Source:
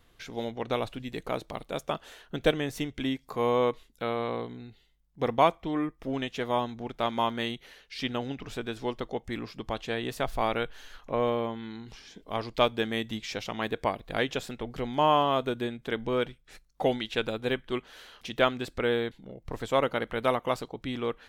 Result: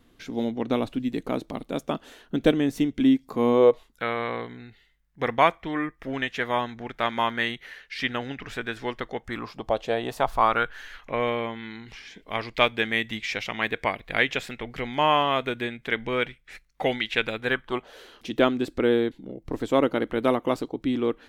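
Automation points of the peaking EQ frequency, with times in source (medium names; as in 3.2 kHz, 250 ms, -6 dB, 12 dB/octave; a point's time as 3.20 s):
peaking EQ +12.5 dB 0.98 oct
3.52 s 260 Hz
4.03 s 1.8 kHz
9.17 s 1.8 kHz
9.78 s 530 Hz
10.96 s 2.1 kHz
17.39 s 2.1 kHz
18.15 s 300 Hz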